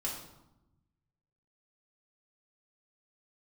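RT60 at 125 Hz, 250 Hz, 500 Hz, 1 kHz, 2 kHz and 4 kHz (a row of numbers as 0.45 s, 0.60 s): 1.7 s, 1.4 s, 0.90 s, 0.90 s, 0.65 s, 0.60 s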